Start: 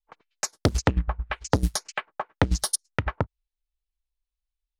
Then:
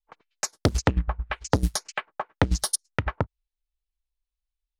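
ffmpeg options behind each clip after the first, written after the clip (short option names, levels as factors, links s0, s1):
-af anull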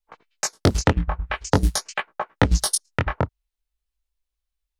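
-af "flanger=delay=16.5:depth=7.3:speed=0.46,volume=2.24"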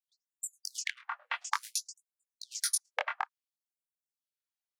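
-af "afreqshift=310,afftfilt=real='re*gte(b*sr/1024,510*pow(7200/510,0.5+0.5*sin(2*PI*0.58*pts/sr)))':imag='im*gte(b*sr/1024,510*pow(7200/510,0.5+0.5*sin(2*PI*0.58*pts/sr)))':win_size=1024:overlap=0.75,volume=0.422"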